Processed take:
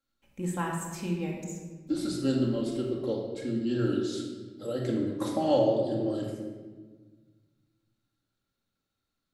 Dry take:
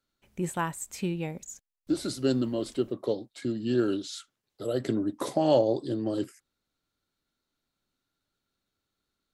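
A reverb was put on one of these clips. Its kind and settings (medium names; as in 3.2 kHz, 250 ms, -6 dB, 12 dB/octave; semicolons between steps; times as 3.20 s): simulated room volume 1300 m³, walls mixed, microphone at 2.2 m; trim -5.5 dB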